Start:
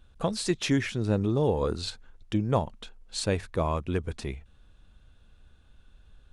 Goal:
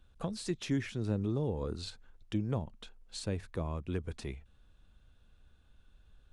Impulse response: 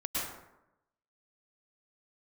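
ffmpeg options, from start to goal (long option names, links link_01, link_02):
-filter_complex "[0:a]acrossover=split=360[link_01][link_02];[link_02]acompressor=threshold=-34dB:ratio=5[link_03];[link_01][link_03]amix=inputs=2:normalize=0,volume=-6dB"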